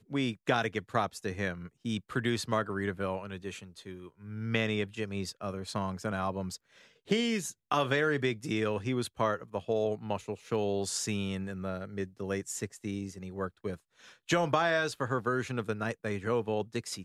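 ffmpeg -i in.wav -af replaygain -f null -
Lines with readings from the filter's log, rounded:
track_gain = +12.5 dB
track_peak = 0.153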